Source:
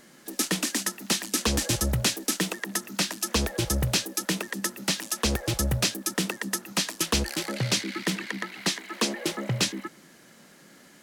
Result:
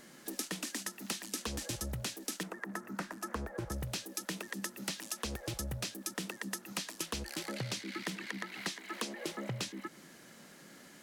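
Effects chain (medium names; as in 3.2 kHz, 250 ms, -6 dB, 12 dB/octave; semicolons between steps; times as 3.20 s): 2.43–3.72 s: resonant high shelf 2.2 kHz -12.5 dB, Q 1.5; compression 6:1, threshold -34 dBFS, peak gain reduction 14 dB; trim -2 dB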